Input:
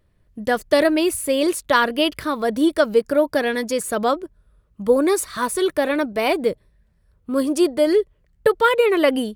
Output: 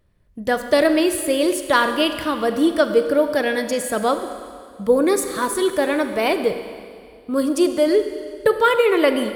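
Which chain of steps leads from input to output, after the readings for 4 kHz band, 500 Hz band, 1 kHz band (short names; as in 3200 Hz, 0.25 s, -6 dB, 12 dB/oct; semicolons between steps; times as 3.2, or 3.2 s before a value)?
+0.5 dB, +0.5 dB, +0.5 dB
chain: Schroeder reverb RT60 2.1 s, combs from 32 ms, DRR 8 dB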